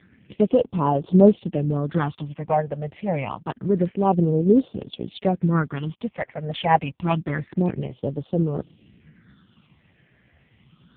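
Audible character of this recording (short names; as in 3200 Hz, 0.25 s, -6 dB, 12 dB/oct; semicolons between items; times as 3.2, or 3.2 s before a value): phasing stages 6, 0.27 Hz, lowest notch 320–1900 Hz; AMR-NB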